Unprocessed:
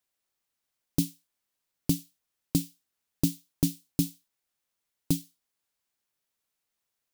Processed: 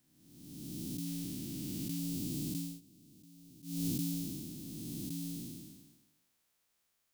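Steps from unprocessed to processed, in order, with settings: spectral blur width 779 ms; 1.06–1.99 s: peaking EQ 1.9 kHz +4.5 dB 1.3 oct; 2.57–3.87 s: dip -24 dB, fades 0.24 s; trim +7 dB

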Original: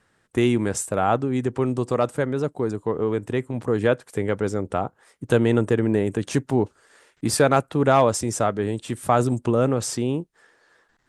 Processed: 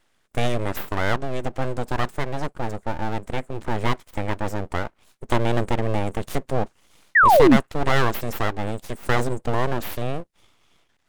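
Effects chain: full-wave rectifier; painted sound fall, 7.15–7.57 s, 200–2000 Hz -13 dBFS

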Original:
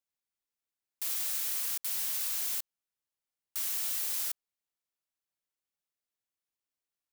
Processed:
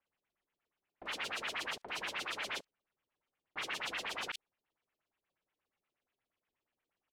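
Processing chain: LFO low-pass sine 8.4 Hz 370–3000 Hz; bands offset in time lows, highs 40 ms, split 3.2 kHz; trim +8.5 dB

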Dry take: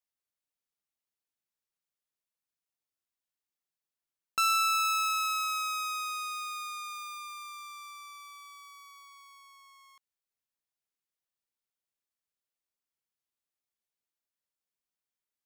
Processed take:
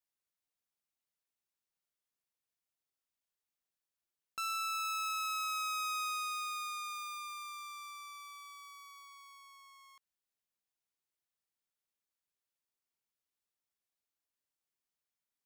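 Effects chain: peak limiter -30.5 dBFS, peak gain reduction 10 dB; trim -1.5 dB

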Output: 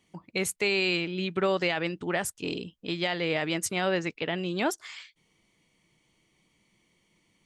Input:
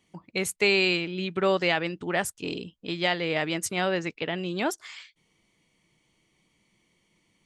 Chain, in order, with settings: peak limiter -15.5 dBFS, peak gain reduction 6 dB

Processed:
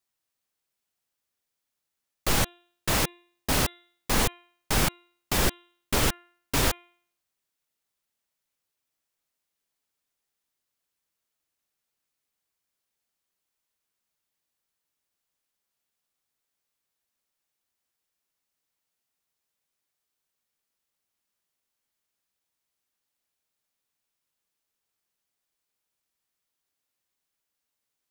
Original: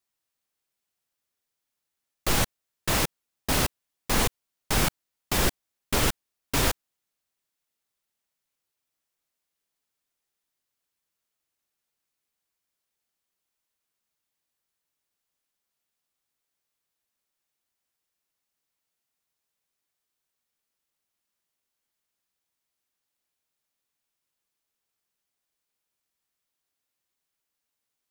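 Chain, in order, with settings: de-hum 348.9 Hz, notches 11

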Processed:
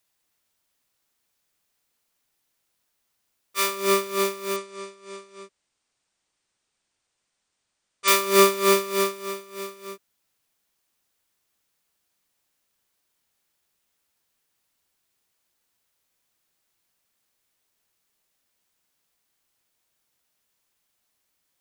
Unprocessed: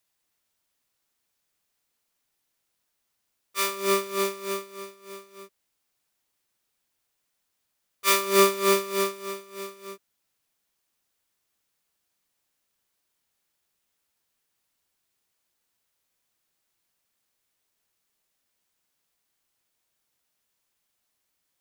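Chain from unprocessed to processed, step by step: 4.56–8.08 s: brick-wall FIR low-pass 9.5 kHz; trim +2.5 dB

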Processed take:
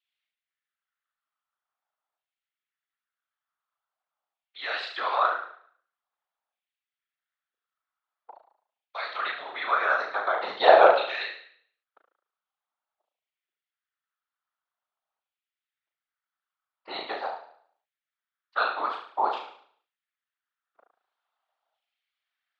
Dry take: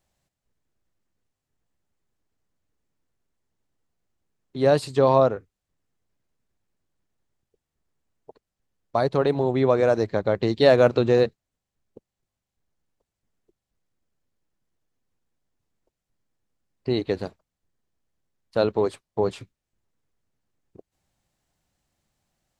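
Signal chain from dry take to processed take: gate -47 dBFS, range -7 dB; LFO high-pass saw down 0.46 Hz 770–2600 Hz; cabinet simulation 360–4200 Hz, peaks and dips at 720 Hz +8 dB, 1.3 kHz +9 dB, 3.4 kHz +5 dB; on a send: flutter echo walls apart 6.2 m, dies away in 0.58 s; on the sum: whisper effect; trim -3.5 dB

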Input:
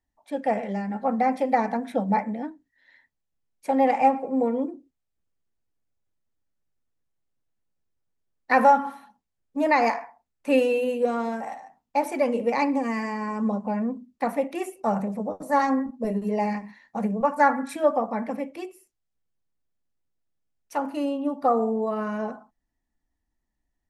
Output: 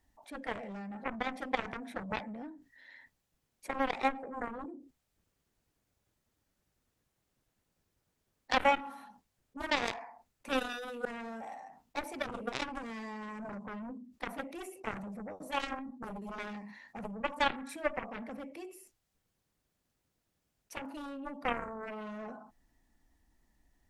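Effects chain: Chebyshev shaper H 3 -9 dB, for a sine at -6.5 dBFS; level flattener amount 50%; trim -6.5 dB

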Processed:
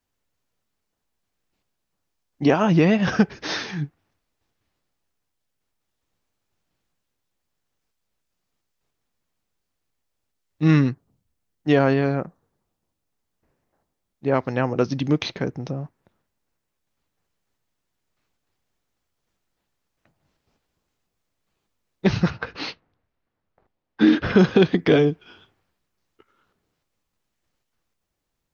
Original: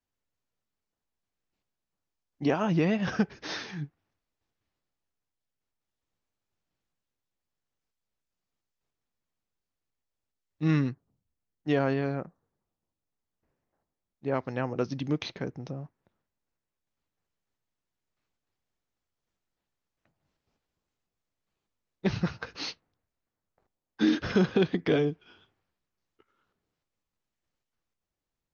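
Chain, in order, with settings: 22.30–24.39 s: low-pass 3.3 kHz 12 dB/octave; trim +8.5 dB

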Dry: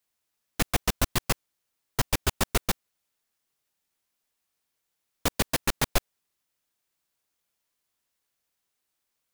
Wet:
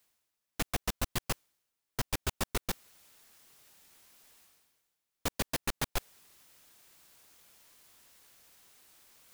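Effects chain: reverse; upward compressor, threshold -34 dBFS; reverse; hard clipper -18.5 dBFS, distortion -12 dB; trim -6 dB

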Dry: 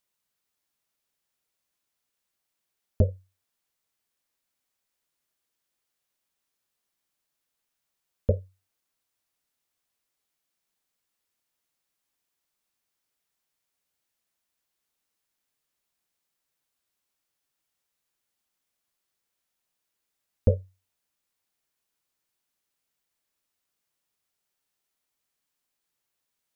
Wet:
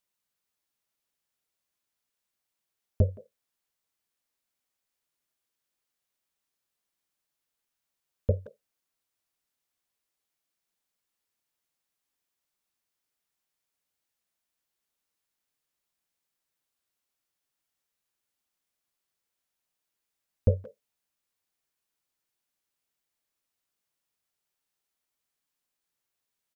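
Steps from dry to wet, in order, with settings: dynamic bell 120 Hz, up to +5 dB, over -38 dBFS, Q 2.6; speakerphone echo 170 ms, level -16 dB; trim -3 dB

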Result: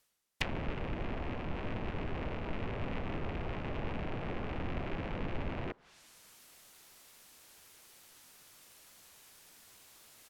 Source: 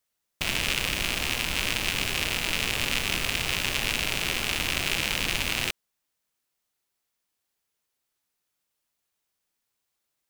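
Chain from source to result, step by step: low-pass that closes with the level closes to 840 Hz, closed at -27 dBFS; harmony voices -4 st -5 dB; reverse; upward compressor, threshold -35 dBFS; reverse; trim -3 dB

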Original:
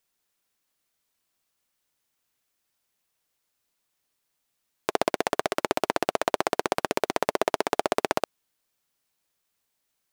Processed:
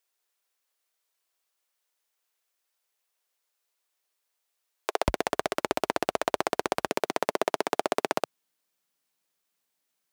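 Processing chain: high-pass 390 Hz 24 dB/octave, from 5.08 s 47 Hz, from 6.88 s 140 Hz; trim -2 dB

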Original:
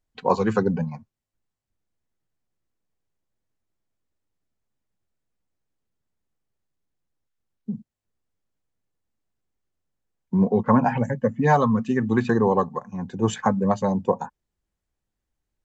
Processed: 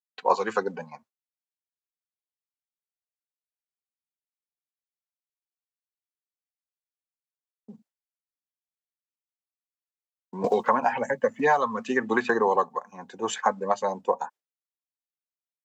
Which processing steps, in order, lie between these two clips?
expander -42 dBFS; high-pass 560 Hz 12 dB/octave; 10.44–12.56 s: three bands compressed up and down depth 100%; trim +1 dB

